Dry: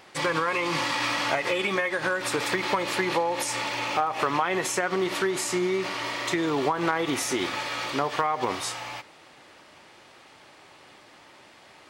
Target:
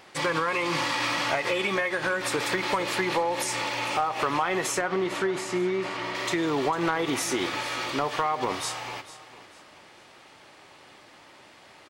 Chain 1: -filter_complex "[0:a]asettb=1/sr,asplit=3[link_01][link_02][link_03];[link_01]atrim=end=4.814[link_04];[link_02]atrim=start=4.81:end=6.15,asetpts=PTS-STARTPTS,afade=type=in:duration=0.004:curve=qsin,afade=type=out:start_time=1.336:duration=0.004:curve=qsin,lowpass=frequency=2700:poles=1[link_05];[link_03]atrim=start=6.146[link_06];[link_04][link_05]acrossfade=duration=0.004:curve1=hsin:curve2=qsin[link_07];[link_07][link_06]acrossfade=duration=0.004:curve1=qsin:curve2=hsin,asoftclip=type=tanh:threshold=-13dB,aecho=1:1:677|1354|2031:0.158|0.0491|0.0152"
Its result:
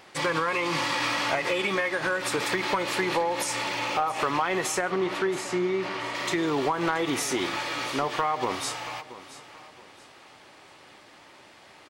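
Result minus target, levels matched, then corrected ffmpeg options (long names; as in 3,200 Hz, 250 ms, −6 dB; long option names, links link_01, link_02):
echo 227 ms late
-filter_complex "[0:a]asettb=1/sr,asplit=3[link_01][link_02][link_03];[link_01]atrim=end=4.814[link_04];[link_02]atrim=start=4.81:end=6.15,asetpts=PTS-STARTPTS,afade=type=in:duration=0.004:curve=qsin,afade=type=out:start_time=1.336:duration=0.004:curve=qsin,lowpass=frequency=2700:poles=1[link_05];[link_03]atrim=start=6.146[link_06];[link_04][link_05]acrossfade=duration=0.004:curve1=hsin:curve2=qsin[link_07];[link_07][link_06]acrossfade=duration=0.004:curve1=qsin:curve2=hsin,asoftclip=type=tanh:threshold=-13dB,aecho=1:1:450|900|1350:0.158|0.0491|0.0152"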